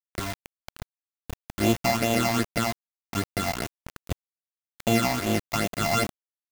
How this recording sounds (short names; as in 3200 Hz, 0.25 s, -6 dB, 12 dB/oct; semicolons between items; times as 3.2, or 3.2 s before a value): a buzz of ramps at a fixed pitch in blocks of 64 samples; phasing stages 8, 2.5 Hz, lowest notch 410–1600 Hz; a quantiser's noise floor 6-bit, dither none